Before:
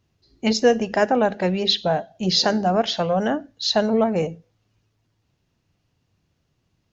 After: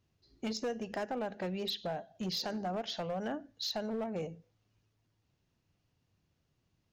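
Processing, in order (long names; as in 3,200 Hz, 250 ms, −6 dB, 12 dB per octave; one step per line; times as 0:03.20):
downward compressor 3 to 1, threshold −28 dBFS, peak gain reduction 12.5 dB
hard clipping −23 dBFS, distortion −18 dB
level −7.5 dB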